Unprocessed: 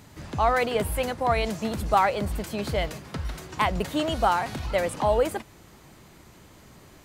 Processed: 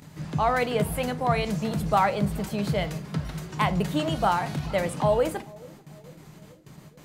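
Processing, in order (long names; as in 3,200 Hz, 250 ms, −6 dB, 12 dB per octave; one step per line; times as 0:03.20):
parametric band 160 Hz +13 dB 0.63 octaves
noise gate with hold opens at −36 dBFS
convolution reverb RT60 0.40 s, pre-delay 7 ms, DRR 12 dB
upward compression, threshold −41 dBFS
low-shelf EQ 96 Hz −6 dB
feedback echo with a band-pass in the loop 439 ms, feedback 65%, band-pass 350 Hz, level −21.5 dB
level −1.5 dB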